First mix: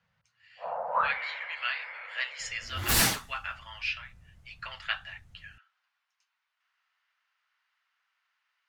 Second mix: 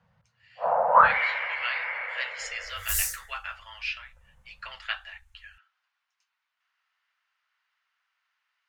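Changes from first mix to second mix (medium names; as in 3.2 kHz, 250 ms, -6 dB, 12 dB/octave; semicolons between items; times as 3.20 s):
first sound +10.5 dB; second sound: add inverse Chebyshev band-stop 200–2100 Hz, stop band 60 dB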